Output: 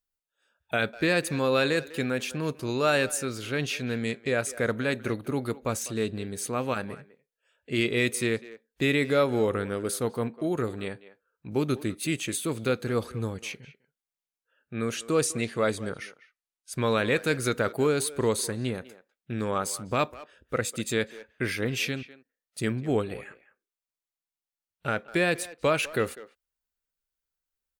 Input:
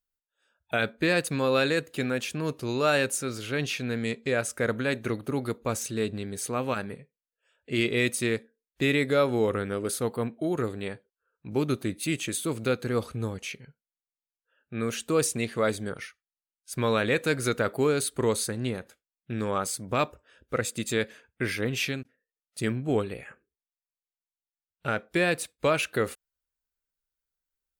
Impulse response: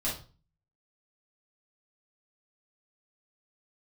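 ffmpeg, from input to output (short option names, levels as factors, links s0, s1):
-filter_complex "[0:a]asettb=1/sr,asplit=3[s0][s1][s2];[s0]atrim=end=14.854[s3];[s1]atrim=start=14.85:end=16.86,asetpts=PTS-STARTPTS,afade=t=in:d=0.004:c=qsin,afade=t=out:st=2.006:d=0.004:c=qsin,lowpass=12000[s4];[s2]atrim=start=16.856[s5];[s3][s4]acrossfade=d=0.004:c1=hsin:c2=qsin[s6];[s6][s5]acrossfade=d=0.004:c1=qsin:c2=hsin,asplit=2[s7][s8];[s8]adelay=200,highpass=300,lowpass=3400,asoftclip=type=hard:threshold=0.0944,volume=0.158[s9];[s7][s9]amix=inputs=2:normalize=0"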